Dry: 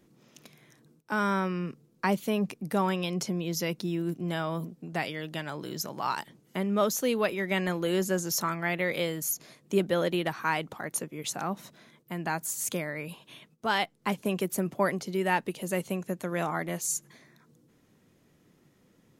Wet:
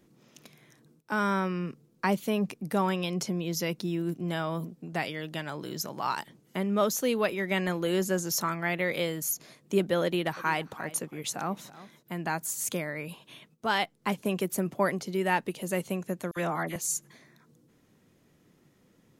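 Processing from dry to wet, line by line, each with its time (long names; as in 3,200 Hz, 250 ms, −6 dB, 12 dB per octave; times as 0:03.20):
0:10.04–0:12.21: single-tap delay 327 ms −17.5 dB
0:16.31–0:16.76: all-pass dispersion lows, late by 55 ms, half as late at 2,000 Hz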